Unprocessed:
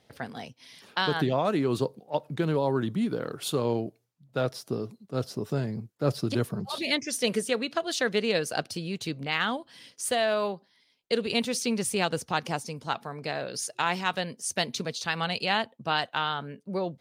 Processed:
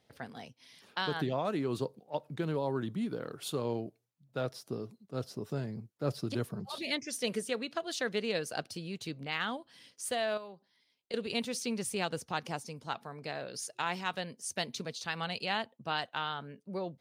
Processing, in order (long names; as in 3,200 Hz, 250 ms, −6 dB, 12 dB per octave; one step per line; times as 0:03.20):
0:10.37–0:11.14: downward compressor 6 to 1, threshold −36 dBFS, peak gain reduction 12.5 dB
level −7 dB